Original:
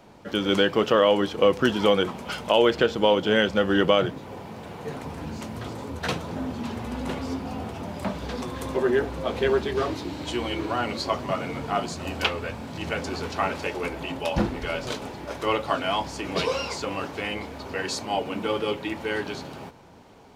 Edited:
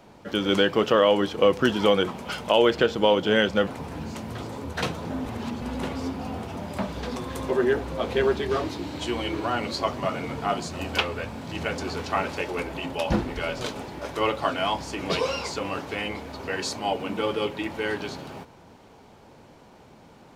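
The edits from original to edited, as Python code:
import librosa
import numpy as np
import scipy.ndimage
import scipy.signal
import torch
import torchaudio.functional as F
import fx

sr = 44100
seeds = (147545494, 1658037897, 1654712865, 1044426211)

y = fx.edit(x, sr, fx.cut(start_s=3.67, length_s=1.26),
    fx.reverse_span(start_s=6.52, length_s=0.36), tone=tone)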